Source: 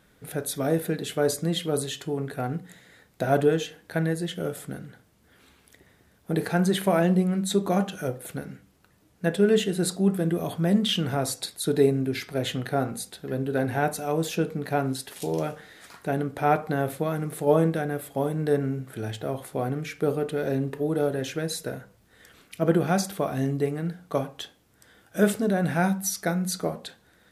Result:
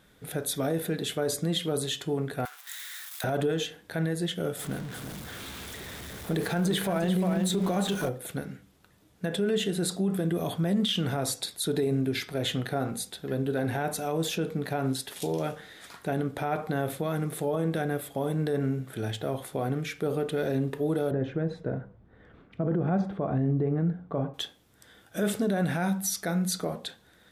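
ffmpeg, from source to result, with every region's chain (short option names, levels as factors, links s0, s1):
-filter_complex "[0:a]asettb=1/sr,asplit=3[s0][s1][s2];[s0]atrim=end=2.454[s3];[s1]atrim=start=2.45:end=3.24,asetpts=PTS-STARTPTS,afade=t=in:d=0.004:c=qsin,afade=t=out:st=0.786:d=0.004:c=qsin,aeval=exprs='val(0)+0.5*0.00944*sgn(val(0))':c=same,highpass=f=1100:w=0.5412,highpass=f=1100:w=1.3066,highshelf=f=7300:g=12[s4];[s2]atrim=start=3.236[s5];[s3][s4]acrossfade=d=0.004:c1=hsin:c2=qsin[s6];[s6][s5]acrossfade=d=0.004:c1=qsin:c2=hsin,asettb=1/sr,asplit=3[s7][s8][s9];[s7]atrim=end=4.594[s10];[s8]atrim=start=4.59:end=8.09,asetpts=PTS-STARTPTS,afade=t=in:d=0.004:c=qsin,afade=t=out:st=3.496:d=0.004:c=qsin,aeval=exprs='val(0)+0.5*0.0141*sgn(val(0))':c=same,aecho=1:1:350:0.398,atrim=end_sample=154350[s11];[s9]atrim=start=8.086[s12];[s10][s11]acrossfade=d=0.004:c1=hsin:c2=qsin[s13];[s13][s12]acrossfade=d=0.004:c1=qsin:c2=hsin,asettb=1/sr,asplit=3[s14][s15][s16];[s14]atrim=end=21.114[s17];[s15]atrim=start=21.11:end=24.34,asetpts=PTS-STARTPTS,afade=t=in:d=0.004:c=qsin,afade=t=out:st=3.226:d=0.004:c=qsin,lowpass=1300,lowshelf=f=320:g=7[s18];[s16]atrim=start=24.336[s19];[s17][s18]acrossfade=d=0.004:c1=hsin:c2=qsin[s20];[s20][s19]acrossfade=d=0.004:c1=qsin:c2=hsin,equalizer=f=3500:t=o:w=0.21:g=5.5,alimiter=limit=0.112:level=0:latency=1:release=48"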